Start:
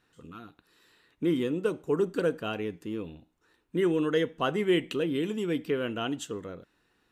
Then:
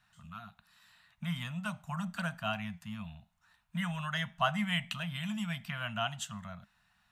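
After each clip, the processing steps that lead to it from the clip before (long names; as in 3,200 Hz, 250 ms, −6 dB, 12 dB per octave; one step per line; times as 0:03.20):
Chebyshev band-stop filter 210–650 Hz, order 4
level +1 dB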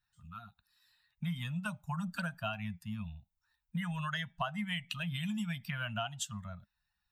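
spectral dynamics exaggerated over time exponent 1.5
downward compressor 8 to 1, threshold −40 dBFS, peak gain reduction 15 dB
level +7 dB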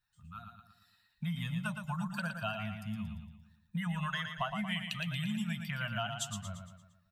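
repeating echo 115 ms, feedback 47%, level −6.5 dB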